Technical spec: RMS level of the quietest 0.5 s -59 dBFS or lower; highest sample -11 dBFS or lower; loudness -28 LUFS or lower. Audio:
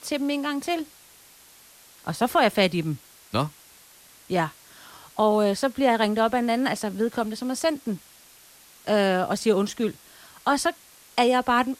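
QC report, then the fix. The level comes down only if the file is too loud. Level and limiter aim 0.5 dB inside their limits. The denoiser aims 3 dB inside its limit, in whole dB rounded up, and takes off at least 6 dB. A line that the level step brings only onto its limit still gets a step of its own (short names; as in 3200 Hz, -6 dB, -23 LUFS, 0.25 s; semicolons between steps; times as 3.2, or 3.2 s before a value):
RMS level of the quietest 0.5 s -52 dBFS: fail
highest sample -9.5 dBFS: fail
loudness -24.5 LUFS: fail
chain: denoiser 6 dB, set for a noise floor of -52 dBFS; gain -4 dB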